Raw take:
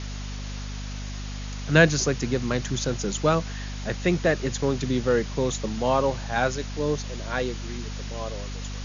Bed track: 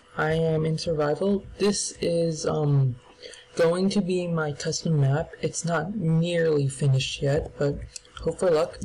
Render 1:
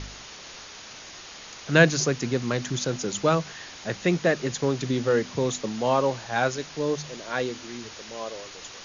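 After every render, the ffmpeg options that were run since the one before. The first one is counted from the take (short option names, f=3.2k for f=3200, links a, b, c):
-af "bandreject=f=50:t=h:w=4,bandreject=f=100:t=h:w=4,bandreject=f=150:t=h:w=4,bandreject=f=200:t=h:w=4,bandreject=f=250:t=h:w=4"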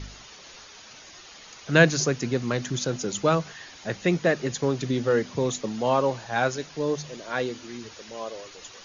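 -af "afftdn=nr=7:nf=-43"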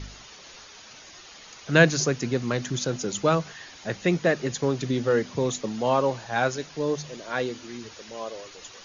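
-af anull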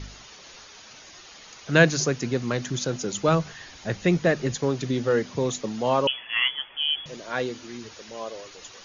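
-filter_complex "[0:a]asettb=1/sr,asplit=3[a][b][c];[a]atrim=end=3.284[d];[b]atrim=start=3.28:end=4.57,asetpts=PTS-STARTPTS,afade=t=in:d=0.004:c=qsin,afade=t=out:st=1.286:d=0.004:c=qsin,lowshelf=f=110:g=11[e];[c]atrim=start=4.566[f];[d][e]acrossfade=d=0.004:c1=hsin:c2=qsin[g];[g][f]acrossfade=d=0.004:c1=qsin:c2=hsin,asettb=1/sr,asplit=3[h][i][j];[h]atrim=end=6.074[k];[i]atrim=start=6.07:end=7.06,asetpts=PTS-STARTPTS,afade=t=in:d=0.004:c=qsin,afade=t=out:st=0.986:d=0.004:c=qsin,lowpass=f=3k:t=q:w=0.5098,lowpass=f=3k:t=q:w=0.6013,lowpass=f=3k:t=q:w=0.9,lowpass=f=3k:t=q:w=2.563,afreqshift=-3500[l];[j]atrim=start=7.056[m];[k][l]acrossfade=d=0.004:c1=hsin:c2=qsin[n];[n][m]acrossfade=d=0.004:c1=qsin:c2=hsin"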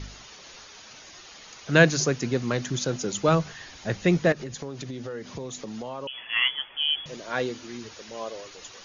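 -filter_complex "[0:a]asettb=1/sr,asplit=3[a][b][c];[a]atrim=end=4.324[d];[b]atrim=start=4.32:end=6.25,asetpts=PTS-STARTPTS,afade=t=in:d=0.004:c=qsin,afade=t=out:st=1.926:d=0.004:c=qsin,acompressor=threshold=-32dB:ratio=6:attack=3.2:release=140:knee=1:detection=peak[e];[c]atrim=start=6.246[f];[d][e]acrossfade=d=0.004:c1=hsin:c2=qsin[g];[g][f]acrossfade=d=0.004:c1=qsin:c2=hsin"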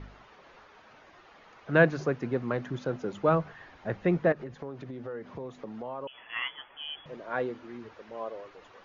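-af "lowpass=1.4k,lowshelf=f=350:g=-7"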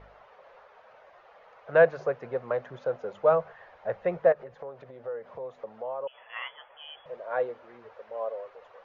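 -af "lowpass=f=1.6k:p=1,lowshelf=f=400:t=q:w=3:g=-9.5"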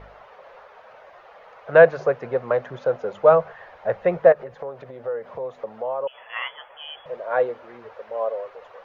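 -af "volume=7.5dB,alimiter=limit=-1dB:level=0:latency=1"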